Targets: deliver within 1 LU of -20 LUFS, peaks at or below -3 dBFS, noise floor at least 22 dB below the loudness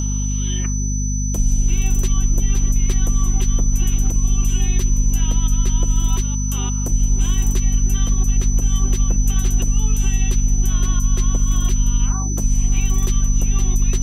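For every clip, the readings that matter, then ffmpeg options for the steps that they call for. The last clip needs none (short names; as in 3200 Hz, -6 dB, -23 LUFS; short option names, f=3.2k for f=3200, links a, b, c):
hum 50 Hz; harmonics up to 250 Hz; hum level -18 dBFS; steady tone 6000 Hz; tone level -27 dBFS; loudness -20.0 LUFS; peak -6.5 dBFS; loudness target -20.0 LUFS
-> -af "bandreject=f=50:t=h:w=4,bandreject=f=100:t=h:w=4,bandreject=f=150:t=h:w=4,bandreject=f=200:t=h:w=4,bandreject=f=250:t=h:w=4"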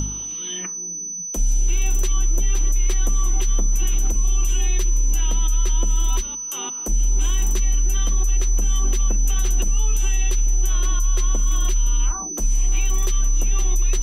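hum none; steady tone 6000 Hz; tone level -27 dBFS
-> -af "bandreject=f=6k:w=30"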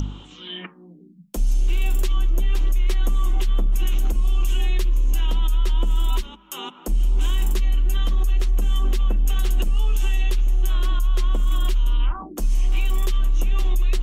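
steady tone none; loudness -24.0 LUFS; peak -11.5 dBFS; loudness target -20.0 LUFS
-> -af "volume=4dB"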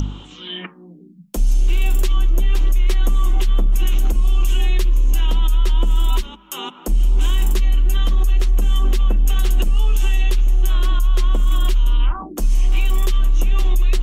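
loudness -20.0 LUFS; peak -7.5 dBFS; noise floor -42 dBFS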